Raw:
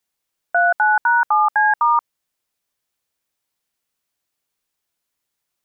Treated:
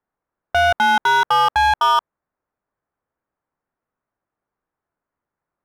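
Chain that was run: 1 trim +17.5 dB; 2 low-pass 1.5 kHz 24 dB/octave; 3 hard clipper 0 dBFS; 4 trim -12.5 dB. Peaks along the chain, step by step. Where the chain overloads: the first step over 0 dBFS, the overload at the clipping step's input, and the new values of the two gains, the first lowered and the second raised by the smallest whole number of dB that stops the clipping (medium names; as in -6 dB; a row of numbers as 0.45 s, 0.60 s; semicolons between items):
+9.0 dBFS, +8.5 dBFS, 0.0 dBFS, -12.5 dBFS; step 1, 8.5 dB; step 1 +8.5 dB, step 4 -3.5 dB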